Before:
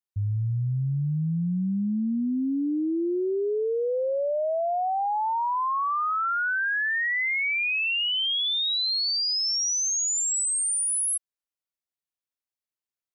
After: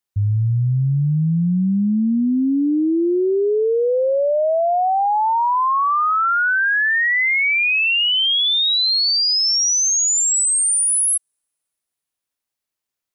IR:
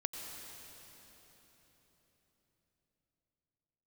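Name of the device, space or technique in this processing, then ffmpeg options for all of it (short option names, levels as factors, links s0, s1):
keyed gated reverb: -filter_complex "[0:a]asplit=3[s0][s1][s2];[1:a]atrim=start_sample=2205[s3];[s1][s3]afir=irnorm=-1:irlink=0[s4];[s2]apad=whole_len=579878[s5];[s4][s5]sidechaingate=range=0.00224:threshold=0.0891:ratio=16:detection=peak,volume=0.841[s6];[s0][s6]amix=inputs=2:normalize=0,volume=2.66"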